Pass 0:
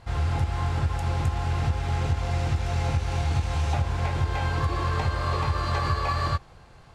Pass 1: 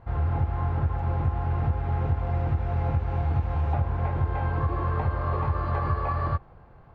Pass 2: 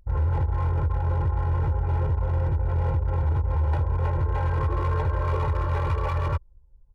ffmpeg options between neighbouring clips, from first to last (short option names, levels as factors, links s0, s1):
-af "lowpass=1300"
-af "anlmdn=6.31,asoftclip=type=hard:threshold=0.0668,aecho=1:1:2.1:0.88"